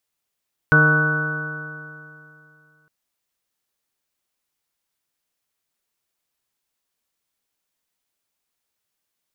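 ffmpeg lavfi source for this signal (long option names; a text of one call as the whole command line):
ffmpeg -f lavfi -i "aevalsrc='0.178*pow(10,-3*t/2.62)*sin(2*PI*152.17*t)+0.0668*pow(10,-3*t/2.62)*sin(2*PI*305.4*t)+0.0708*pow(10,-3*t/2.62)*sin(2*PI*460.7*t)+0.0398*pow(10,-3*t/2.62)*sin(2*PI*619.09*t)+0.0188*pow(10,-3*t/2.62)*sin(2*PI*781.54*t)+0.0251*pow(10,-3*t/2.62)*sin(2*PI*949.01*t)+0.0631*pow(10,-3*t/2.62)*sin(2*PI*1122.36*t)+0.0473*pow(10,-3*t/2.62)*sin(2*PI*1302.43*t)+0.282*pow(10,-3*t/2.62)*sin(2*PI*1489.99*t)':duration=2.16:sample_rate=44100" out.wav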